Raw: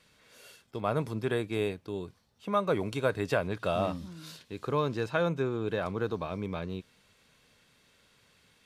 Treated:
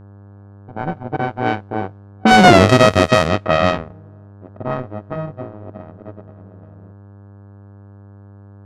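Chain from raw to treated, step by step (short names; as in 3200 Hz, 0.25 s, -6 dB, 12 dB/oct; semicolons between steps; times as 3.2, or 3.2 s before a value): sample sorter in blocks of 64 samples; Doppler pass-by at 2.53, 31 m/s, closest 3.1 m; HPF 51 Hz; sample leveller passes 2; added noise violet -63 dBFS; Bessel low-pass 4200 Hz, order 2; low-pass opened by the level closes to 490 Hz, open at -32.5 dBFS; buzz 100 Hz, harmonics 17, -68 dBFS -8 dB/oct; maximiser +28 dB; gain -1 dB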